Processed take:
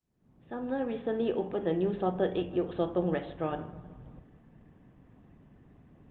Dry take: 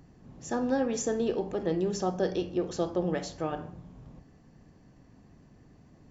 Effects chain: opening faded in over 1.33 s; 1.02–1.8 low shelf 74 Hz -9 dB; downsampling 8000 Hz; dark delay 0.157 s, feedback 56%, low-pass 2600 Hz, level -18 dB; Opus 32 kbps 48000 Hz

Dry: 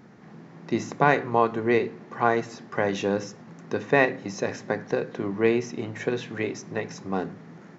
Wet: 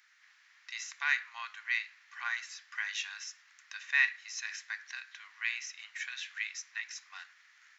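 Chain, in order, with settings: inverse Chebyshev high-pass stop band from 510 Hz, stop band 60 dB

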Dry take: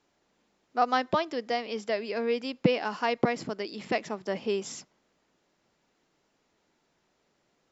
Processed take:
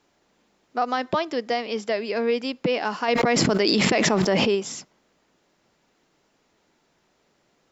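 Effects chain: limiter -19 dBFS, peak gain reduction 9.5 dB; 3.08–4.55 fast leveller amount 100%; gain +6 dB

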